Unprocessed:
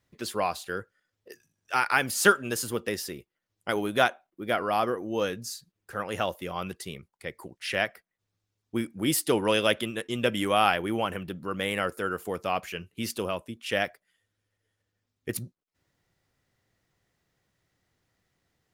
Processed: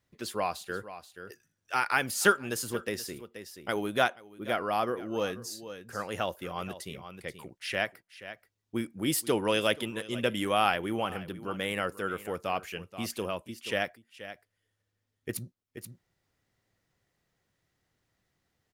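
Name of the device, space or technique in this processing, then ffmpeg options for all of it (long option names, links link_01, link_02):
ducked delay: -filter_complex "[0:a]asplit=3[link_01][link_02][link_03];[link_02]adelay=480,volume=-7dB[link_04];[link_03]apad=whole_len=847349[link_05];[link_04][link_05]sidechaincompress=threshold=-34dB:ratio=10:attack=42:release=966[link_06];[link_01][link_06]amix=inputs=2:normalize=0,volume=-3dB"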